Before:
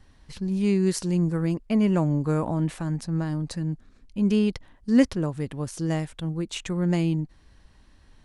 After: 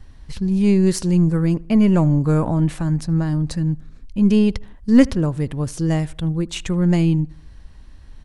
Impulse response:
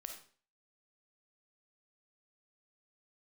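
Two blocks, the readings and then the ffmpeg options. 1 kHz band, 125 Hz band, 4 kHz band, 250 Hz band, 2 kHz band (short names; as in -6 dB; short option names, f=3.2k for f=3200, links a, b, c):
+4.5 dB, +8.0 dB, +4.5 dB, +7.0 dB, +4.5 dB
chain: -filter_complex "[0:a]aeval=exprs='0.473*(cos(1*acos(clip(val(0)/0.473,-1,1)))-cos(1*PI/2))+0.0119*(cos(6*acos(clip(val(0)/0.473,-1,1)))-cos(6*PI/2))':c=same,lowshelf=f=120:g=10.5,asplit=2[a][b];[b]adelay=78,lowpass=f=2.3k:p=1,volume=-24dB,asplit=2[c][d];[d]adelay=78,lowpass=f=2.3k:p=1,volume=0.51,asplit=2[e][f];[f]adelay=78,lowpass=f=2.3k:p=1,volume=0.51[g];[a][c][e][g]amix=inputs=4:normalize=0,volume=4.5dB"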